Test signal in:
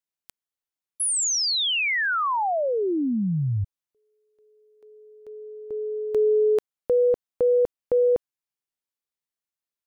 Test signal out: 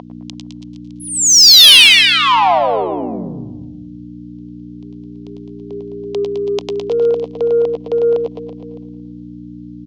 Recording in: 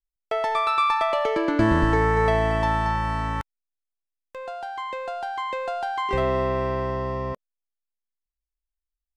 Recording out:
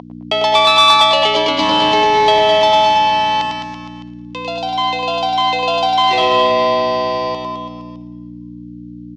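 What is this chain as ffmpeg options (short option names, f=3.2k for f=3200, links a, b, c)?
-filter_complex "[0:a]afreqshift=-22,aexciter=amount=10.4:drive=5.1:freq=2.5k,aeval=exprs='val(0)+0.0631*(sin(2*PI*60*n/s)+sin(2*PI*2*60*n/s)/2+sin(2*PI*3*60*n/s)/3+sin(2*PI*4*60*n/s)/4+sin(2*PI*5*60*n/s)/5)':c=same,aemphasis=mode=reproduction:type=50fm,asplit=2[a][b];[b]aecho=0:1:100|210|331|464.1|610.5:0.631|0.398|0.251|0.158|0.1[c];[a][c]amix=inputs=2:normalize=0,acompressor=mode=upward:threshold=-29dB:ratio=1.5:attack=12:release=591:knee=2.83:detection=peak,highpass=320,equalizer=f=330:t=q:w=4:g=-6,equalizer=f=730:t=q:w=4:g=7,equalizer=f=1k:t=q:w=4:g=9,equalizer=f=1.5k:t=q:w=4:g=-5,equalizer=f=3.2k:t=q:w=4:g=4,lowpass=f=5.8k:w=0.5412,lowpass=f=5.8k:w=1.3066,asplit=2[d][e];[e]aecho=0:1:113|226|339|452|565|678:0.168|0.099|0.0584|0.0345|0.0203|0.012[f];[d][f]amix=inputs=2:normalize=0,acontrast=39,volume=-1dB"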